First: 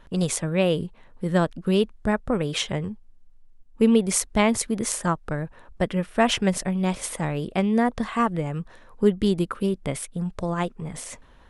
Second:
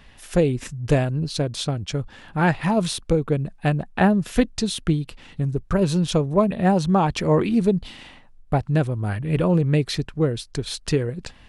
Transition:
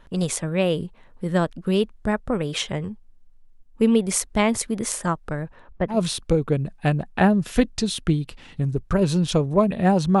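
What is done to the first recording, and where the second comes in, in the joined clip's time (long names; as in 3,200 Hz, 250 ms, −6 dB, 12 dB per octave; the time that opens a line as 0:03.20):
first
0:05.44–0:05.98: low-pass filter 9,800 Hz → 1,200 Hz
0:05.93: continue with second from 0:02.73, crossfade 0.10 s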